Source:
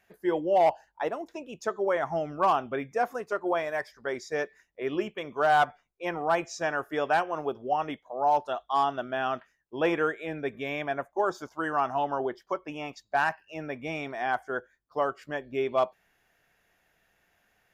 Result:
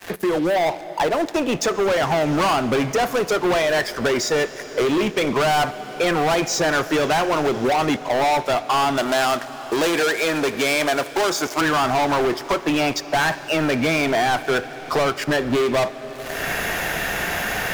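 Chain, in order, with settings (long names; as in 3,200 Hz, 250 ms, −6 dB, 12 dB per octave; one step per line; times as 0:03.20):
fade in at the beginning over 2.77 s
dynamic equaliser 800 Hz, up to −3 dB, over −33 dBFS, Q 0.87
upward compression, threshold −24 dBFS
leveller curve on the samples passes 5
0:08.97–0:11.61: bass and treble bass −11 dB, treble +7 dB
convolution reverb RT60 5.3 s, pre-delay 7 ms, DRR 15 dB
multiband upward and downward compressor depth 40%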